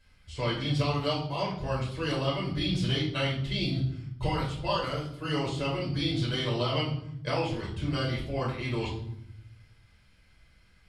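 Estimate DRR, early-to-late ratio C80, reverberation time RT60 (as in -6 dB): -4.5 dB, 10.0 dB, 0.75 s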